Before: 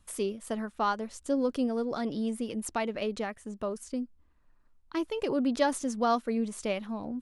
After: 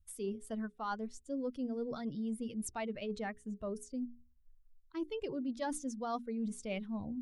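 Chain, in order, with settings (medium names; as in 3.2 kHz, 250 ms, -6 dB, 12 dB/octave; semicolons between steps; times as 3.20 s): expander on every frequency bin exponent 1.5; bass shelf 230 Hz +7 dB; hum notches 60/120/180/240/300/360/420 Hz; reverse; compression 5:1, threshold -37 dBFS, peak gain reduction 15 dB; reverse; trim +1 dB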